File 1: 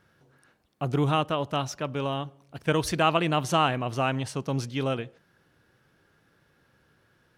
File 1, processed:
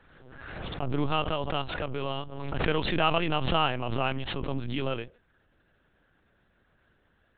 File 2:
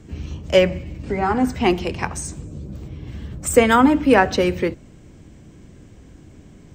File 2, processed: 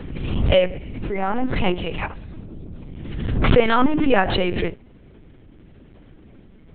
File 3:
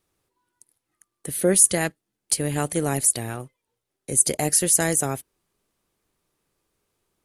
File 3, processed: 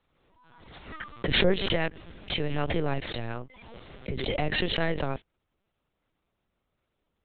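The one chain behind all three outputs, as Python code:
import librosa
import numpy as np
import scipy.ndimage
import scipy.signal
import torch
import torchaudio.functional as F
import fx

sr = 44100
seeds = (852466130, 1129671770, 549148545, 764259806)

y = fx.dynamic_eq(x, sr, hz=2900.0, q=2.9, threshold_db=-44.0, ratio=4.0, max_db=4)
y = fx.lpc_vocoder(y, sr, seeds[0], excitation='pitch_kept', order=10)
y = fx.pre_swell(y, sr, db_per_s=39.0)
y = y * librosa.db_to_amplitude(-3.0)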